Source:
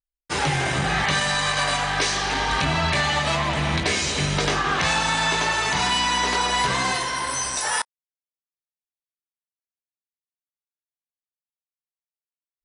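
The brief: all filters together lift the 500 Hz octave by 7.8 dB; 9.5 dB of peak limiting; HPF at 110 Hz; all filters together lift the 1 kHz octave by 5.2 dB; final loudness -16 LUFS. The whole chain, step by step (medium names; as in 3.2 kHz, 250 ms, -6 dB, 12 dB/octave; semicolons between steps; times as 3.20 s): high-pass 110 Hz; peaking EQ 500 Hz +9 dB; peaking EQ 1 kHz +3.5 dB; trim +7.5 dB; peak limiter -7.5 dBFS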